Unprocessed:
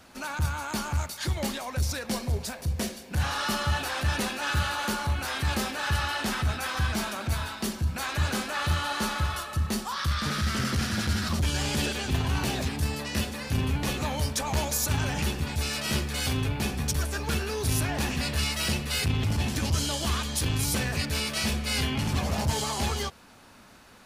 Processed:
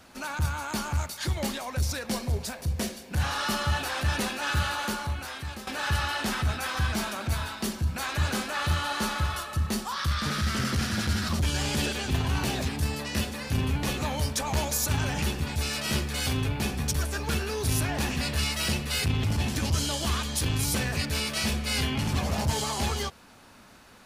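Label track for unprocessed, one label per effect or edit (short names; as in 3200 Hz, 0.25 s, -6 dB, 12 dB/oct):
4.720000	5.670000	fade out linear, to -14.5 dB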